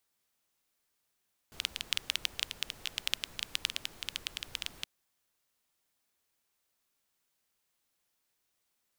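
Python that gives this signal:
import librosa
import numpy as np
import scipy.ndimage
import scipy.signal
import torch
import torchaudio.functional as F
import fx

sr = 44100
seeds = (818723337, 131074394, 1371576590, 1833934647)

y = fx.rain(sr, seeds[0], length_s=3.32, drops_per_s=11.0, hz=3100.0, bed_db=-14.5)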